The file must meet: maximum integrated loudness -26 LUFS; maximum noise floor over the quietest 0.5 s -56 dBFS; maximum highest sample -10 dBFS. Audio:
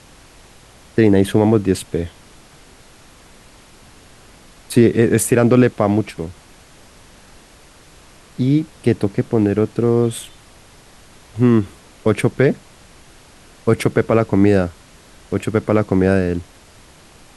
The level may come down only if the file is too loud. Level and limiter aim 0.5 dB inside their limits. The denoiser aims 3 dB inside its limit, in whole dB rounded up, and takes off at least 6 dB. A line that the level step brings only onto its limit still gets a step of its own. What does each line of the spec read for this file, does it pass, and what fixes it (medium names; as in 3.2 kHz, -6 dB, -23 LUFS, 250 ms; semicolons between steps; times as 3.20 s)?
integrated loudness -17.0 LUFS: fail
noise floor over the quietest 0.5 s -46 dBFS: fail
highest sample -2.0 dBFS: fail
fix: noise reduction 6 dB, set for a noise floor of -46 dBFS; trim -9.5 dB